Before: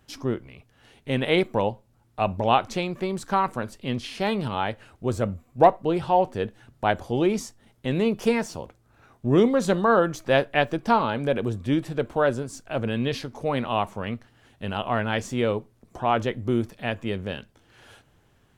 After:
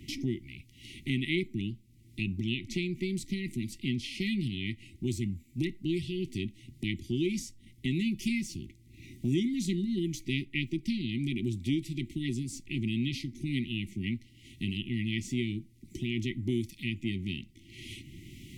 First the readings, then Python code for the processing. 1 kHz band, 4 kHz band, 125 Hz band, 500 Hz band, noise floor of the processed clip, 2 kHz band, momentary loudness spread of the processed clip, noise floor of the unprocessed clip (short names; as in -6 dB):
under -40 dB, -3.5 dB, -3.5 dB, -16.5 dB, -58 dBFS, -8.0 dB, 13 LU, -62 dBFS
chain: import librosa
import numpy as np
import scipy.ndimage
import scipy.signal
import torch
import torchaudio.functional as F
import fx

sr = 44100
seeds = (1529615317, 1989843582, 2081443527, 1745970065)

y = fx.brickwall_bandstop(x, sr, low_hz=380.0, high_hz=1900.0)
y = fx.band_squash(y, sr, depth_pct=70)
y = y * 10.0 ** (-3.5 / 20.0)